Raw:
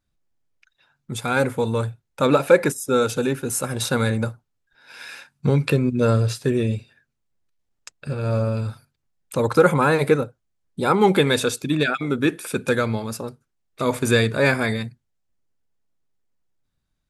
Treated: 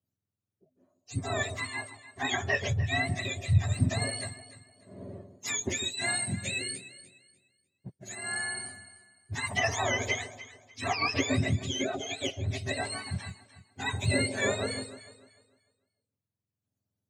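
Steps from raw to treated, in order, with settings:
frequency axis turned over on the octave scale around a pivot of 980 Hz
0:01.67–0:02.25: bass and treble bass −6 dB, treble −10 dB
delay that swaps between a low-pass and a high-pass 149 ms, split 890 Hz, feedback 52%, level −9.5 dB
level −8.5 dB

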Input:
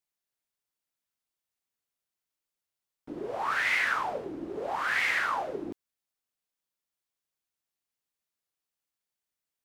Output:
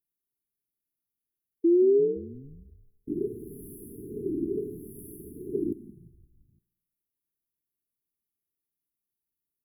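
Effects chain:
leveller curve on the samples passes 1
sound drawn into the spectrogram rise, 0:01.64–0:02.70, 330–660 Hz −24 dBFS
linear-phase brick-wall band-stop 440–9,900 Hz
on a send: echo with shifted repeats 172 ms, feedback 62%, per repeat −87 Hz, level −19.5 dB
on the sum: spring reverb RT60 1 s, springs 52 ms, DRR 18.5 dB
level +4.5 dB

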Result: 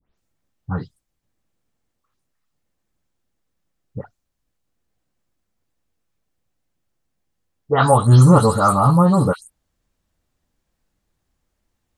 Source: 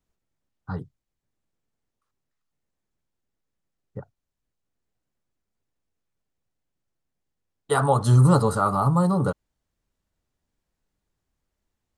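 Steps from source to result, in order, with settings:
every frequency bin delayed by itself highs late, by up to 177 ms
level +7 dB

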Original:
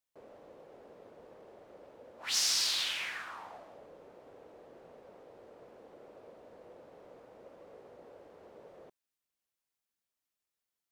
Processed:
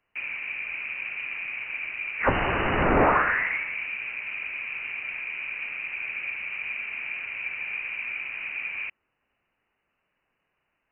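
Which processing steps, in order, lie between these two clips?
sine wavefolder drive 11 dB, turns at −16.5 dBFS
voice inversion scrambler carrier 2,900 Hz
level +6 dB

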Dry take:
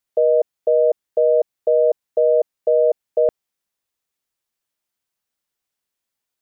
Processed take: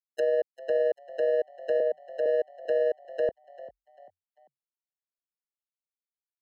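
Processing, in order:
noise gate −14 dBFS, range −42 dB
decimation without filtering 19×
brickwall limiter −17 dBFS, peak gain reduction 5 dB
0:01.80–0:02.26: Chebyshev high-pass with heavy ripple 160 Hz, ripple 6 dB
treble cut that deepens with the level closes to 790 Hz, closed at −28.5 dBFS
echo with shifted repeats 394 ms, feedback 36%, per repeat +44 Hz, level −17.5 dB

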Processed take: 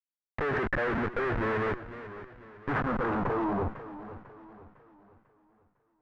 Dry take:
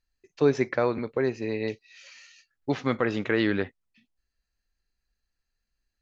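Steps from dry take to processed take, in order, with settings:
comparator with hysteresis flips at −39 dBFS
low-pass filter sweep 1,700 Hz → 520 Hz, 0:02.58–0:04.55
feedback echo with a swinging delay time 500 ms, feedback 41%, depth 136 cents, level −14 dB

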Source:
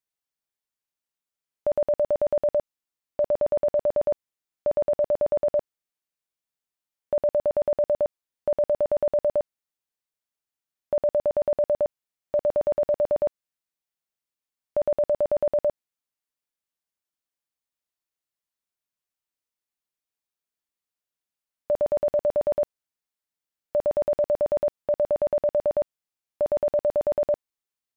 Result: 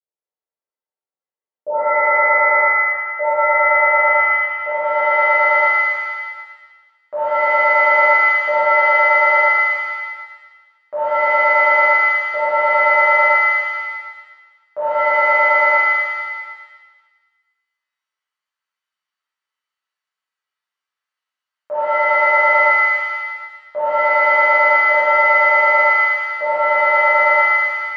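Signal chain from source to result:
band-pass filter sweep 490 Hz → 1,300 Hz, 0:02.62–0:05.32
speech leveller 0.5 s
reverb with rising layers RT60 1.3 s, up +7 semitones, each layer −2 dB, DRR −11.5 dB

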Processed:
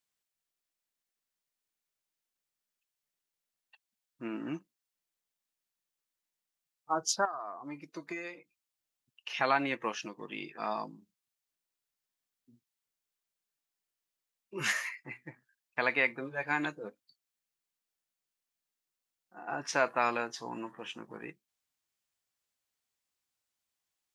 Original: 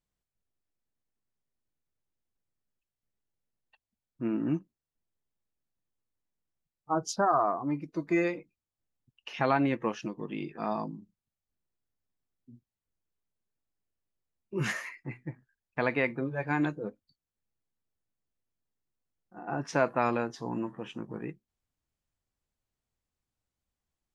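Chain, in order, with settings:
low-pass filter 3,300 Hz 6 dB per octave
spectral tilt +4.5 dB per octave
0:07.25–0:09.30: downward compressor 5 to 1, threshold −38 dBFS, peak gain reduction 14.5 dB

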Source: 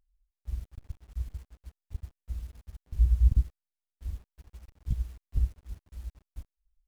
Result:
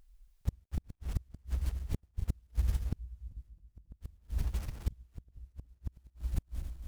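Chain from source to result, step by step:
feedback delay that plays each chunk backwards 138 ms, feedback 70%, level −10.5 dB
gate with flip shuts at −32 dBFS, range −37 dB
level +13.5 dB

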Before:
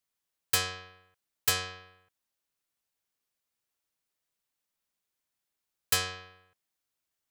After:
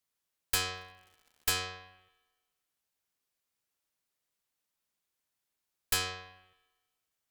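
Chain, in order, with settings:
asymmetric clip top −30 dBFS
0:00.73–0:01.59: surface crackle 160 per second −50 dBFS
spring reverb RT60 1.3 s, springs 39/51 ms, chirp 80 ms, DRR 17 dB

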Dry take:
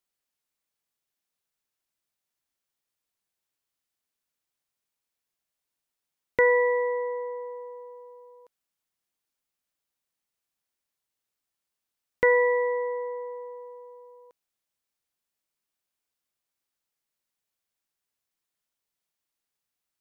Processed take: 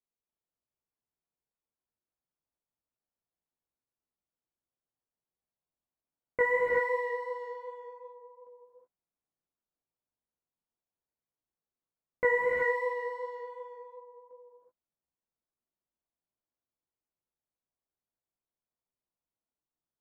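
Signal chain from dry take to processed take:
low-pass that shuts in the quiet parts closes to 830 Hz, open at −26 dBFS
in parallel at −11 dB: hard clipping −38.5 dBFS, distortion −1 dB
on the sum: chorus effect 2.7 Hz, delay 16 ms, depth 3.3 ms
reverb whose tail is shaped and stops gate 400 ms rising, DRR −1 dB
level −4 dB

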